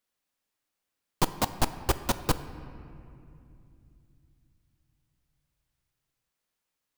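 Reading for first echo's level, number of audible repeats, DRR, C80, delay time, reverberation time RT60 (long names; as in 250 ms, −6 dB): no echo audible, no echo audible, 11.0 dB, 13.5 dB, no echo audible, 2.7 s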